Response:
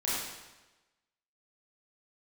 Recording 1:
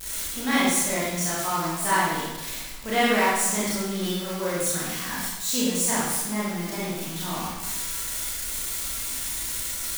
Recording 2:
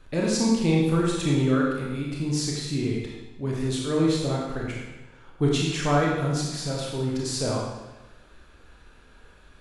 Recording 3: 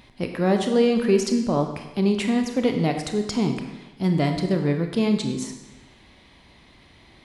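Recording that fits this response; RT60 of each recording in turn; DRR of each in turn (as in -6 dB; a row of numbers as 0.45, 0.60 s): 1; 1.1, 1.1, 1.1 s; -8.5, -3.5, 5.0 dB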